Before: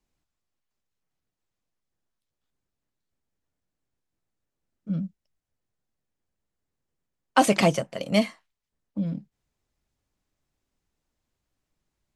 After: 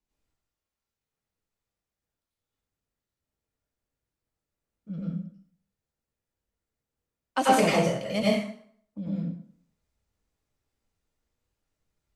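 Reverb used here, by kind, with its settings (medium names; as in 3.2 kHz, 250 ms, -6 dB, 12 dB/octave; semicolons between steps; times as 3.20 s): plate-style reverb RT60 0.58 s, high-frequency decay 0.8×, pre-delay 80 ms, DRR -7 dB; trim -8.5 dB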